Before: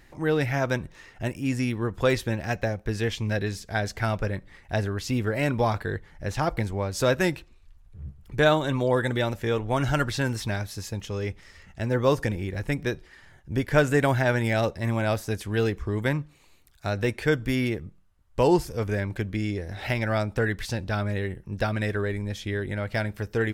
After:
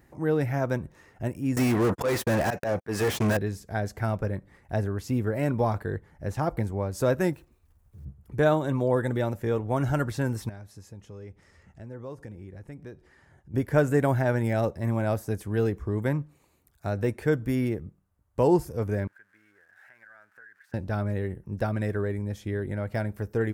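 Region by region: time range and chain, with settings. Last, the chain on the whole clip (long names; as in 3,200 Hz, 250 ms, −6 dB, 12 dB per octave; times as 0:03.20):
0:01.56–0:03.37: noise gate −36 dBFS, range −59 dB + volume swells 355 ms + mid-hump overdrive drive 36 dB, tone 6,700 Hz, clips at −15 dBFS
0:07.33–0:08.06: one scale factor per block 5 bits + downward compressor 2 to 1, threshold −42 dBFS
0:10.49–0:13.54: low-pass filter 9,600 Hz + downward compressor 2 to 1, threshold −48 dBFS
0:19.07–0:20.74: spike at every zero crossing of −21.5 dBFS + resonant band-pass 1,600 Hz, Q 11 + downward compressor 3 to 1, threshold −43 dBFS
whole clip: high-pass filter 60 Hz; parametric band 3,500 Hz −13 dB 2.2 octaves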